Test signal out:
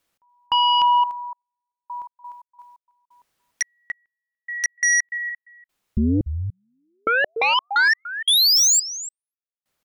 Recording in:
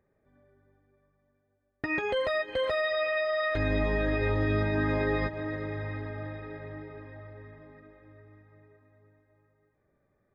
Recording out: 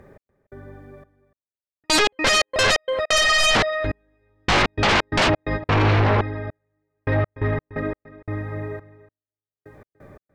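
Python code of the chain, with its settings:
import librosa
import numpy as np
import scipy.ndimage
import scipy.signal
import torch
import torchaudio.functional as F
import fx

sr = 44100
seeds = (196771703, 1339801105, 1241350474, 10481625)

p1 = fx.step_gate(x, sr, bpm=87, pattern='x..xxx.....x.x.', floor_db=-60.0, edge_ms=4.5)
p2 = fx.rider(p1, sr, range_db=10, speed_s=2.0)
p3 = p1 + F.gain(torch.from_numpy(p2), -1.0).numpy()
p4 = fx.high_shelf(p3, sr, hz=3700.0, db=-7.0)
p5 = p4 + fx.echo_single(p4, sr, ms=292, db=-18.5, dry=0)
p6 = fx.dynamic_eq(p5, sr, hz=1500.0, q=2.5, threshold_db=-47.0, ratio=4.0, max_db=-6)
y = fx.fold_sine(p6, sr, drive_db=16, ceiling_db=-14.0)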